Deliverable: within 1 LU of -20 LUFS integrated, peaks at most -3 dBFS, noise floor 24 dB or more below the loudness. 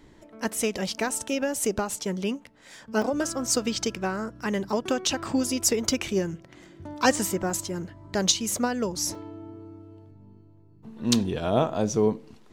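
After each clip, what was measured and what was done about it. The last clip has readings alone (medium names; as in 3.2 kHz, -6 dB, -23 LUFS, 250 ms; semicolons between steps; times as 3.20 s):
dropouts 3; longest dropout 2.4 ms; loudness -27.0 LUFS; peak level -6.0 dBFS; loudness target -20.0 LUFS
-> interpolate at 3.02/7.50/9.15 s, 2.4 ms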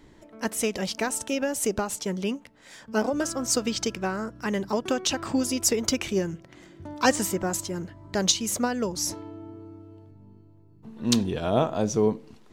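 dropouts 0; loudness -27.0 LUFS; peak level -6.0 dBFS; loudness target -20.0 LUFS
-> trim +7 dB; peak limiter -3 dBFS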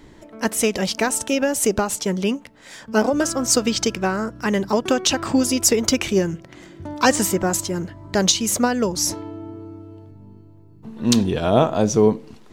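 loudness -20.0 LUFS; peak level -3.0 dBFS; noise floor -46 dBFS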